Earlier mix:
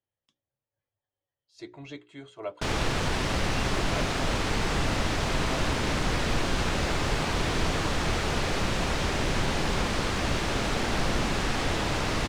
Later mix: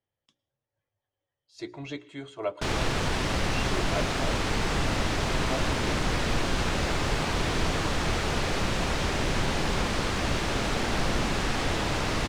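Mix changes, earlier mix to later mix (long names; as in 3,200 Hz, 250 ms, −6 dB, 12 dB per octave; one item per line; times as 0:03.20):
speech +3.0 dB
reverb: on, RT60 0.40 s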